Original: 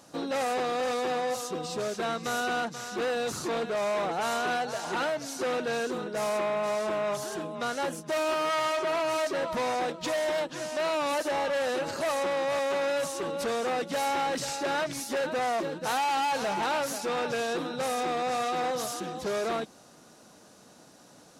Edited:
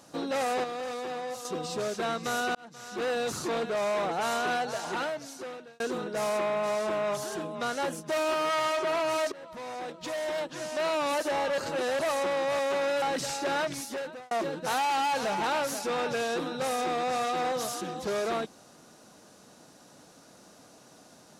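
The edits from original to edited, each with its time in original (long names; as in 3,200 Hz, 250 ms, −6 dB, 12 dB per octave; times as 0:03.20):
0:00.64–0:01.45: clip gain −6 dB
0:02.55–0:03.11: fade in
0:04.77–0:05.80: fade out linear
0:09.32–0:10.86: fade in, from −18.5 dB
0:11.58–0:11.99: reverse
0:13.02–0:14.21: remove
0:14.89–0:15.50: fade out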